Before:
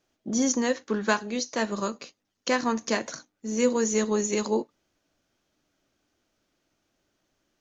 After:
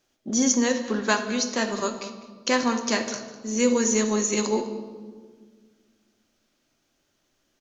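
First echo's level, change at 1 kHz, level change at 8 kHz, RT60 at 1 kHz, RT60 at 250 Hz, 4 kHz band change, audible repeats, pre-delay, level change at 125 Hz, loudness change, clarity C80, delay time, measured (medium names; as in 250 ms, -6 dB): -17.0 dB, +2.0 dB, no reading, 1.4 s, 2.5 s, +5.0 dB, 1, 3 ms, no reading, +2.5 dB, 10.5 dB, 201 ms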